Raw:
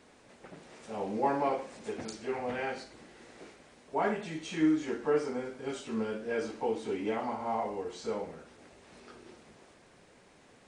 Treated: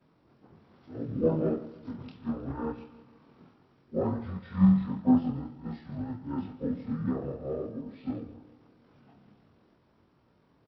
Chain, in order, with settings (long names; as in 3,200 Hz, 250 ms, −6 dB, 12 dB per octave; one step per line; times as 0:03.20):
every overlapping window played backwards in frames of 50 ms
high-pass filter 69 Hz 12 dB per octave
high-shelf EQ 3,100 Hz −8.5 dB
repeating echo 156 ms, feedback 49%, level −12.5 dB
dynamic equaliser 120 Hz, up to +8 dB, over −59 dBFS, Q 1.7
pitch shifter −9.5 semitones
expander for the loud parts 1.5 to 1, over −45 dBFS
level +8.5 dB